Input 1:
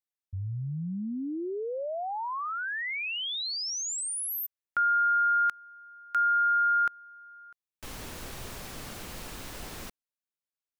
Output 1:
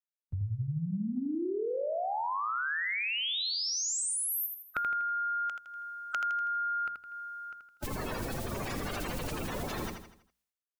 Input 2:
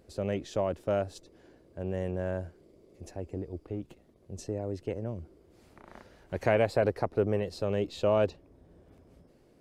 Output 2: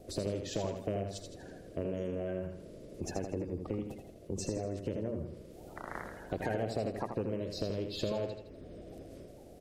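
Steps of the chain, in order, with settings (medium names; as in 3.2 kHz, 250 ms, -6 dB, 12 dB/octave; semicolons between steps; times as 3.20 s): coarse spectral quantiser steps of 30 dB; hum notches 60/120/180/240 Hz; gate with hold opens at -56 dBFS, hold 465 ms, range -21 dB; in parallel at +1.5 dB: peak limiter -25 dBFS; on the sum: compression 6:1, threshold -35 dBFS; on a send: feedback delay 81 ms, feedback 44%, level -6.5 dB; on the sum: trim +2 dB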